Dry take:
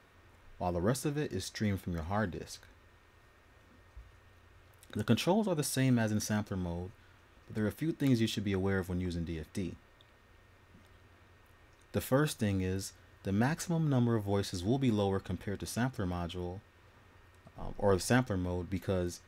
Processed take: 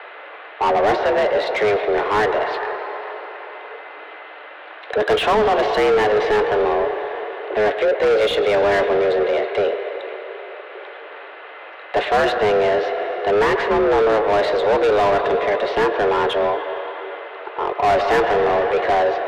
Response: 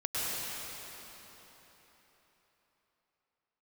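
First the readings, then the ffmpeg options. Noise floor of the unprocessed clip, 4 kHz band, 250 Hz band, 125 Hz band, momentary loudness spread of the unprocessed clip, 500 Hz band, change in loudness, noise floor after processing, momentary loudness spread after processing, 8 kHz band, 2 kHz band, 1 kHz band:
-63 dBFS, +14.5 dB, +4.5 dB, -4.0 dB, 12 LU, +20.5 dB, +15.0 dB, -38 dBFS, 19 LU, n/a, +19.0 dB, +22.5 dB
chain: -filter_complex "[0:a]highpass=f=170:t=q:w=0.5412,highpass=f=170:t=q:w=1.307,lowpass=f=3.5k:t=q:w=0.5176,lowpass=f=3.5k:t=q:w=0.7071,lowpass=f=3.5k:t=q:w=1.932,afreqshift=210,asplit=2[a][b];[1:a]atrim=start_sample=2205[c];[b][c]afir=irnorm=-1:irlink=0,volume=-19dB[d];[a][d]amix=inputs=2:normalize=0,asplit=2[e][f];[f]highpass=f=720:p=1,volume=30dB,asoftclip=type=tanh:threshold=-14dB[g];[e][g]amix=inputs=2:normalize=0,lowpass=f=1.5k:p=1,volume=-6dB,volume=6dB"

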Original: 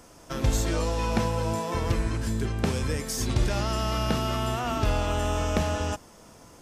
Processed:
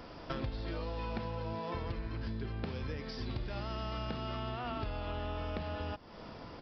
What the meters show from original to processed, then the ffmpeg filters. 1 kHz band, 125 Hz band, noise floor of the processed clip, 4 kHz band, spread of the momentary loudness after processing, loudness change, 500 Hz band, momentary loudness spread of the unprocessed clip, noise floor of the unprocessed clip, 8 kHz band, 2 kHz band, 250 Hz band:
-11.0 dB, -12.0 dB, -50 dBFS, -12.0 dB, 2 LU, -12.0 dB, -11.0 dB, 3 LU, -51 dBFS, under -30 dB, -11.0 dB, -11.5 dB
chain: -af "acompressor=threshold=-39dB:ratio=8,aresample=11025,aresample=44100,volume=3.5dB"

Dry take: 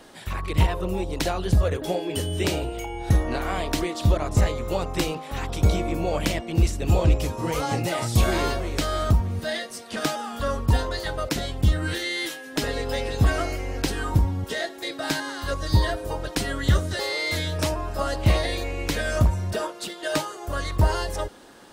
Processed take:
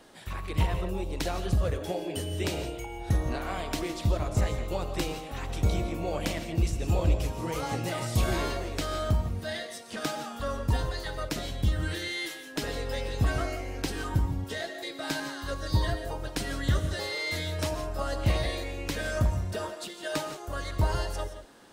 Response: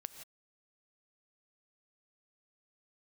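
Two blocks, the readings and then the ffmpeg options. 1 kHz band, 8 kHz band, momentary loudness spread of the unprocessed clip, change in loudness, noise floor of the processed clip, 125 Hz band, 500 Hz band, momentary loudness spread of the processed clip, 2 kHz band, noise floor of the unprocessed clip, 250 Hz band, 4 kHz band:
-6.0 dB, -6.0 dB, 7 LU, -5.5 dB, -43 dBFS, -5.5 dB, -6.0 dB, 7 LU, -5.5 dB, -40 dBFS, -6.0 dB, -5.5 dB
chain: -filter_complex "[1:a]atrim=start_sample=2205[a];[0:a][a]afir=irnorm=-1:irlink=0,volume=-2dB"

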